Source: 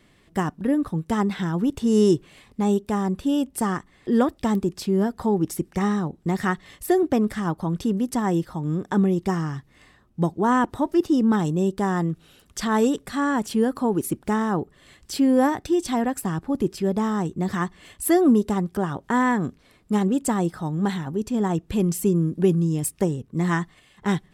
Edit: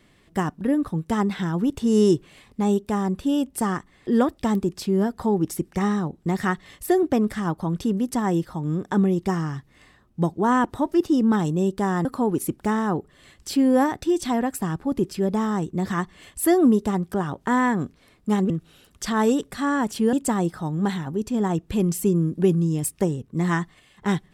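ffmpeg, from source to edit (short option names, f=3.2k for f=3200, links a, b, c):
-filter_complex "[0:a]asplit=4[a][b][c][d];[a]atrim=end=12.052[e];[b]atrim=start=13.678:end=20.132[f];[c]atrim=start=12.048:end=13.682[g];[d]atrim=start=20.128[h];[e][f]acrossfade=d=0.004:c1=hsin:c2=hsin[i];[i][g]acrossfade=d=0.004:c1=hsin:c2=hsin[j];[j][h]acrossfade=d=0.004:c1=hsin:c2=hsin"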